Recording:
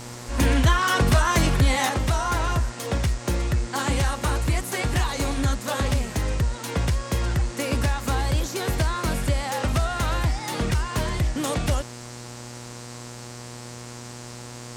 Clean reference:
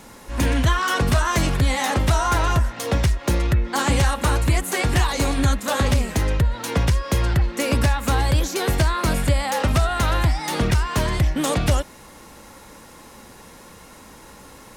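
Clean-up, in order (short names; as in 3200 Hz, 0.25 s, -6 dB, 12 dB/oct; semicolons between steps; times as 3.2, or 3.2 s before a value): de-hum 120.6 Hz, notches 34; noise print and reduce 6 dB; gain 0 dB, from 1.89 s +4.5 dB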